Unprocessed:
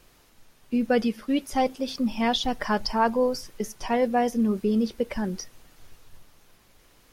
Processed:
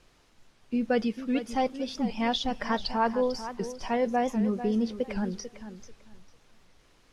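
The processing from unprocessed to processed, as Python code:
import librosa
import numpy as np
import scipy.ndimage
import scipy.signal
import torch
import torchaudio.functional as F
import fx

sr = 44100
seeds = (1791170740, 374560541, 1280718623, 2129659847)

p1 = scipy.signal.sosfilt(scipy.signal.butter(2, 7200.0, 'lowpass', fs=sr, output='sos'), x)
p2 = p1 + fx.echo_feedback(p1, sr, ms=444, feedback_pct=20, wet_db=-12, dry=0)
p3 = fx.record_warp(p2, sr, rpm=78.0, depth_cents=160.0)
y = p3 * librosa.db_to_amplitude(-3.5)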